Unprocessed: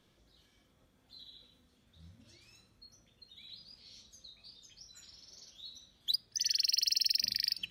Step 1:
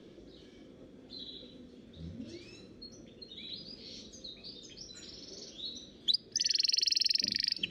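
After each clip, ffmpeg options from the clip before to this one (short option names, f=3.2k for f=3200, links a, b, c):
-filter_complex "[0:a]lowshelf=f=600:t=q:w=1.5:g=12,alimiter=level_in=1.5dB:limit=-24dB:level=0:latency=1:release=199,volume=-1.5dB,acrossover=split=210 7000:gain=0.224 1 0.0708[a][b][c];[a][b][c]amix=inputs=3:normalize=0,volume=8dB"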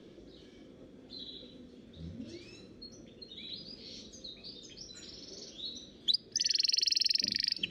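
-af anull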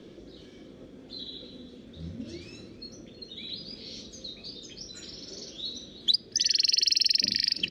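-filter_complex "[0:a]asplit=2[a][b];[b]adelay=320.7,volume=-12dB,highshelf=f=4k:g=-7.22[c];[a][c]amix=inputs=2:normalize=0,volume=5.5dB"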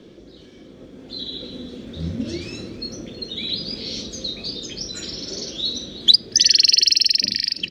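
-af "dynaudnorm=f=270:g=9:m=9.5dB,volume=3dB"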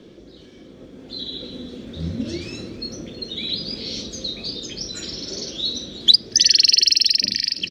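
-af "aecho=1:1:979:0.0794"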